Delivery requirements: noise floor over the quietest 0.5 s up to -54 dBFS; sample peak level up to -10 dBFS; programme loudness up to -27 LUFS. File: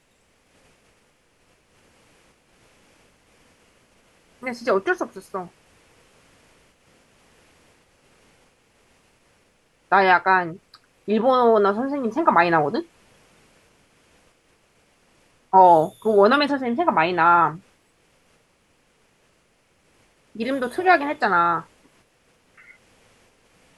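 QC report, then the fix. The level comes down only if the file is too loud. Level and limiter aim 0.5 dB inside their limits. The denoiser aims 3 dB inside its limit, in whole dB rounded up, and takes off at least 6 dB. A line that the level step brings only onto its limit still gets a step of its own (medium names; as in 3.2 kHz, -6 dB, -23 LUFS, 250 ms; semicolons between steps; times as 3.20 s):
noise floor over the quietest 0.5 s -63 dBFS: pass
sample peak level -3.0 dBFS: fail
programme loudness -19.5 LUFS: fail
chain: trim -8 dB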